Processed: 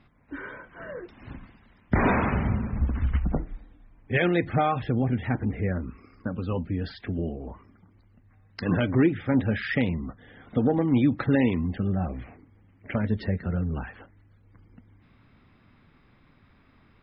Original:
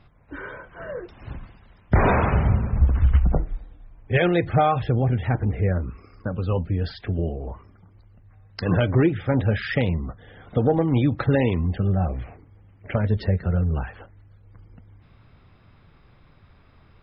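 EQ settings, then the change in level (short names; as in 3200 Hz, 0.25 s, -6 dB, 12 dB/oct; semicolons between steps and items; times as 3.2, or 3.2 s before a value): ten-band EQ 250 Hz +11 dB, 1000 Hz +3 dB, 2000 Hz +7 dB, 4000 Hz +3 dB; -8.5 dB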